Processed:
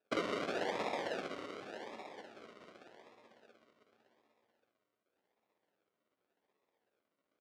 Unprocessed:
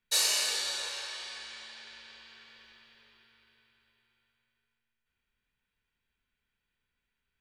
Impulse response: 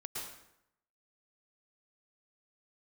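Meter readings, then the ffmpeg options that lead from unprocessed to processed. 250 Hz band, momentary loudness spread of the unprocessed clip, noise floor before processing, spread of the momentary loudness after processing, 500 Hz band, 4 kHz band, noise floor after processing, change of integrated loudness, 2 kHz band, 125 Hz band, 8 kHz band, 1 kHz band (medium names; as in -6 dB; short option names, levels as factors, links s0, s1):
+18.5 dB, 23 LU, -85 dBFS, 20 LU, +9.5 dB, -17.0 dB, under -85 dBFS, -10.0 dB, -5.0 dB, +16.5 dB, -26.5 dB, +4.5 dB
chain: -af "equalizer=f=3000:w=1.7:g=-12.5,tremolo=f=16:d=0.62,aecho=1:1:27|62:0.562|0.596,acrusher=samples=41:mix=1:aa=0.000001:lfo=1:lforange=24.6:lforate=0.87,acompressor=threshold=0.01:ratio=6,highpass=410,lowpass=4200,flanger=delay=9.5:depth=1.5:regen=-62:speed=0.52:shape=triangular,volume=5.62"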